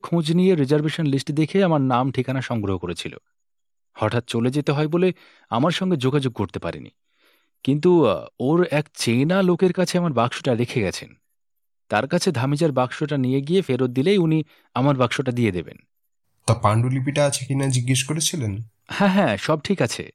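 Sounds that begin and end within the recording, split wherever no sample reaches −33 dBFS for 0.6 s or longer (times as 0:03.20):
0:03.98–0:06.88
0:07.65–0:11.05
0:11.91–0:15.72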